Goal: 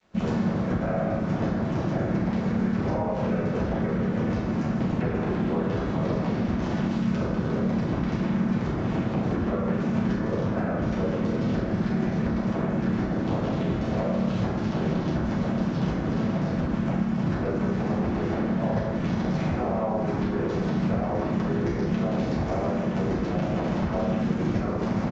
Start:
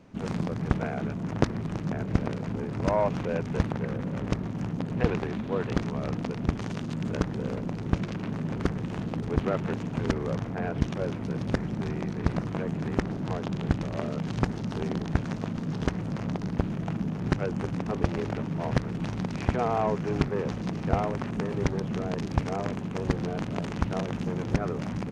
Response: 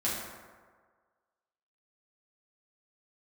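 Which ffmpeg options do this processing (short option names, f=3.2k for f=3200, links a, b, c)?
-filter_complex "[0:a]asplit=2[a][b];[b]aeval=exprs='clip(val(0),-1,0.0708)':c=same,volume=-9.5dB[c];[a][c]amix=inputs=2:normalize=0,lowshelf=f=470:g=-4.5,aresample=16000,aeval=exprs='sgn(val(0))*max(abs(val(0))-0.00335,0)':c=same,aresample=44100,highshelf=f=2.9k:g=-3,asplit=2[d][e];[e]adelay=32,volume=-6dB[f];[d][f]amix=inputs=2:normalize=0,acompressor=threshold=-30dB:ratio=20[g];[1:a]atrim=start_sample=2205,afade=t=out:st=0.33:d=0.01,atrim=end_sample=14994[h];[g][h]afir=irnorm=-1:irlink=0,asplit=2[i][j];[j]asetrate=37084,aresample=44100,atempo=1.18921,volume=-1dB[k];[i][k]amix=inputs=2:normalize=0,acrossover=split=140|1000[l][m][n];[l]acompressor=threshold=-34dB:ratio=4[o];[m]acompressor=threshold=-28dB:ratio=4[p];[n]acompressor=threshold=-44dB:ratio=4[q];[o][p][q]amix=inputs=3:normalize=0,volume=3dB"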